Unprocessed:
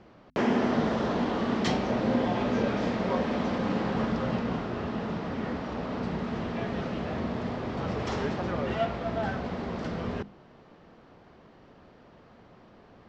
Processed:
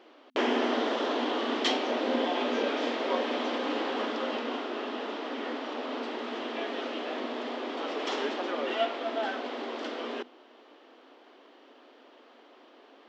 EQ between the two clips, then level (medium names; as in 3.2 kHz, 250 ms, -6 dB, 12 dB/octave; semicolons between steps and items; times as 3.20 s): brick-wall FIR high-pass 240 Hz; peaking EQ 3.2 kHz +8.5 dB 0.65 oct; 0.0 dB